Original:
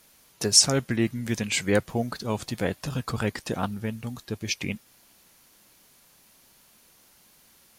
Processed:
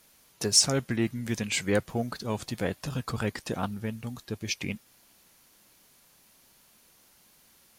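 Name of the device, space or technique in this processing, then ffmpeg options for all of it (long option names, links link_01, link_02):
parallel distortion: -filter_complex "[0:a]asplit=2[link_01][link_02];[link_02]asoftclip=type=hard:threshold=-21dB,volume=-11.5dB[link_03];[link_01][link_03]amix=inputs=2:normalize=0,volume=-4.5dB"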